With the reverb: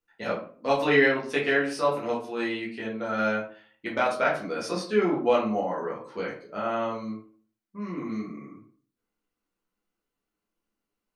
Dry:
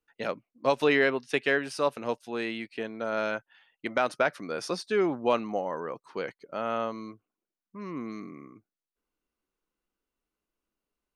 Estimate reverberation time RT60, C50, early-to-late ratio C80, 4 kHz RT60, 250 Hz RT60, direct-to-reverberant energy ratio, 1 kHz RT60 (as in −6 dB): 0.45 s, 6.5 dB, 11.5 dB, 0.30 s, 0.50 s, −5.5 dB, 0.40 s